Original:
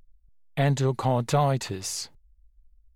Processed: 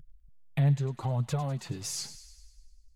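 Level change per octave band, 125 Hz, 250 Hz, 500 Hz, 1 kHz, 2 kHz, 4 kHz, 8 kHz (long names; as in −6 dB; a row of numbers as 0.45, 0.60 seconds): −2.0, −4.5, −12.0, −12.5, −10.5, −5.5, −4.0 decibels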